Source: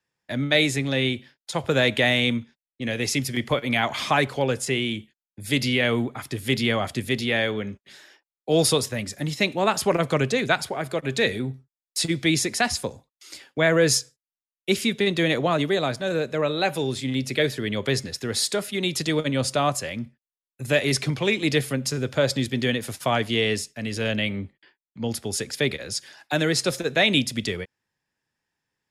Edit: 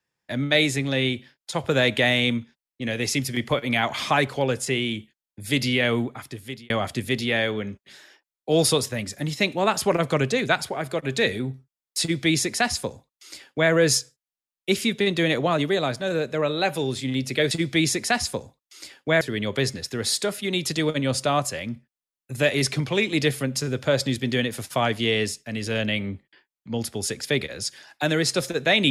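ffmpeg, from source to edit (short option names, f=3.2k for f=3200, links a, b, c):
-filter_complex "[0:a]asplit=4[a][b][c][d];[a]atrim=end=6.7,asetpts=PTS-STARTPTS,afade=t=out:st=5.98:d=0.72[e];[b]atrim=start=6.7:end=17.512,asetpts=PTS-STARTPTS,afade=t=in:d=0.004:c=hsin[f];[c]atrim=start=12.008:end=13.712[g];[d]atrim=start=17.508[h];[e][f]concat=n=2:v=0:a=1[i];[i][g]acrossfade=d=0.004:c1=hsin:c2=hsin[j];[j][h]acrossfade=d=0.004:c1=hsin:c2=hsin"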